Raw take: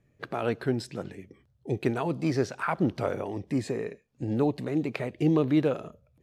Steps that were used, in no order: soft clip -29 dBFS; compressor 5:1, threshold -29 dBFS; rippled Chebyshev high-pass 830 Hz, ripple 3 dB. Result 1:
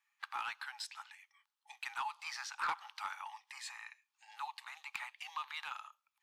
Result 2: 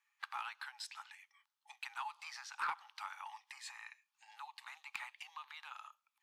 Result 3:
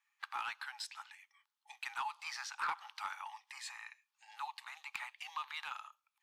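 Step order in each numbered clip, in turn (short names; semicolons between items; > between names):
rippled Chebyshev high-pass > soft clip > compressor; compressor > rippled Chebyshev high-pass > soft clip; rippled Chebyshev high-pass > compressor > soft clip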